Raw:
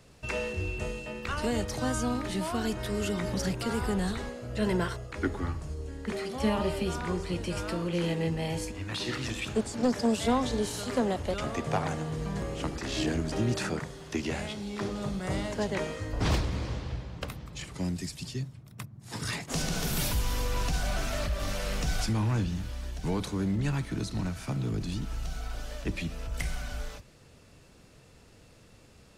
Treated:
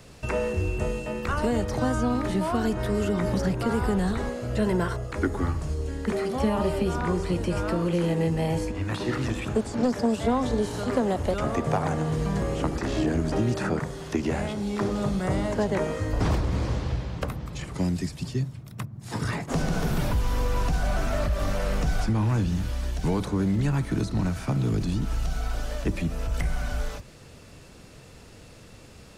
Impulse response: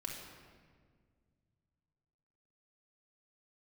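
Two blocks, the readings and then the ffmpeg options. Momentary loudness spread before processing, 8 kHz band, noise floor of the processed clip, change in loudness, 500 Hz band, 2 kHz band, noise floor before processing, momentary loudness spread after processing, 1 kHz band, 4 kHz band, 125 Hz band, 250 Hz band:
8 LU, −2.5 dB, −48 dBFS, +4.5 dB, +5.5 dB, +2.0 dB, −56 dBFS, 6 LU, +4.5 dB, −2.0 dB, +5.5 dB, +5.0 dB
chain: -filter_complex "[0:a]acrossover=split=1700|6000[link_01][link_02][link_03];[link_01]acompressor=threshold=-29dB:ratio=4[link_04];[link_02]acompressor=threshold=-55dB:ratio=4[link_05];[link_03]acompressor=threshold=-58dB:ratio=4[link_06];[link_04][link_05][link_06]amix=inputs=3:normalize=0,volume=8dB"

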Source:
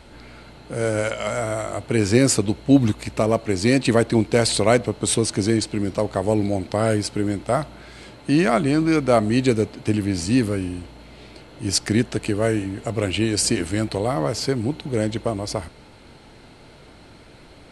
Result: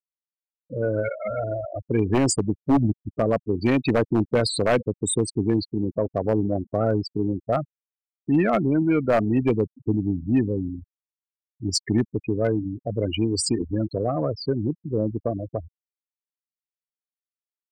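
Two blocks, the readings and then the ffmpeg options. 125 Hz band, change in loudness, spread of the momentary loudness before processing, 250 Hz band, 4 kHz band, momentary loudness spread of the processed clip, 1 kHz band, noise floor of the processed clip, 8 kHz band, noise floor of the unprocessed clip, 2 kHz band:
−2.5 dB, −3.0 dB, 9 LU, −2.5 dB, −5.5 dB, 8 LU, −3.5 dB, below −85 dBFS, −6.0 dB, −47 dBFS, −6.5 dB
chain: -af "afftfilt=real='re*gte(hypot(re,im),0.158)':imag='im*gte(hypot(re,im),0.158)':win_size=1024:overlap=0.75,aeval=exprs='0.335*(abs(mod(val(0)/0.335+3,4)-2)-1)':channel_layout=same,acontrast=48,volume=-7dB"

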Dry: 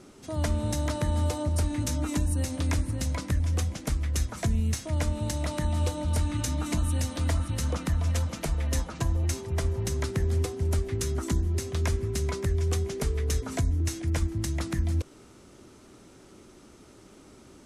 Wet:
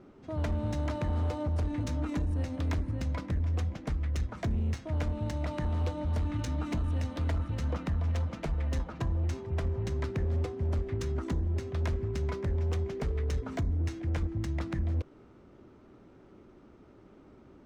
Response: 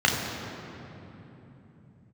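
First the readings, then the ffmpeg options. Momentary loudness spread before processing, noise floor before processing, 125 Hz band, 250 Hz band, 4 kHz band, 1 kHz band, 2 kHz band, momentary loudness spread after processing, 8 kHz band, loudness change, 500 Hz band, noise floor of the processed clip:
3 LU, −53 dBFS, −3.5 dB, −3.5 dB, −10.0 dB, −4.0 dB, −5.5 dB, 2 LU, −17.0 dB, −3.5 dB, −3.5 dB, −56 dBFS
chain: -af "asoftclip=type=hard:threshold=-23dB,adynamicsmooth=sensitivity=4:basefreq=2000,volume=-2.5dB"

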